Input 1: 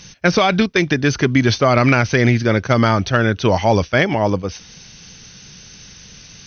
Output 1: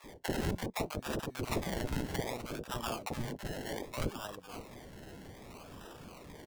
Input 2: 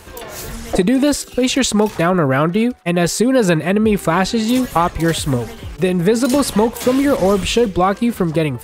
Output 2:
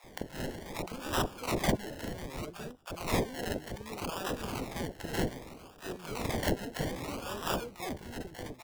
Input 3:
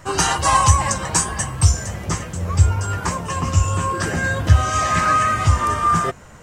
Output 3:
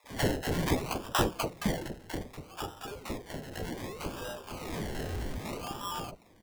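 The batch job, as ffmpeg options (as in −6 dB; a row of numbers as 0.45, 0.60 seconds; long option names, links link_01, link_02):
-filter_complex "[0:a]aderivative,acrusher=samples=29:mix=1:aa=0.000001:lfo=1:lforange=17.4:lforate=0.64,acrossover=split=710[link_01][link_02];[link_01]adelay=40[link_03];[link_03][link_02]amix=inputs=2:normalize=0,volume=-4dB"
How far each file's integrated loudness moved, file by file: −22.5, −20.0, −16.5 LU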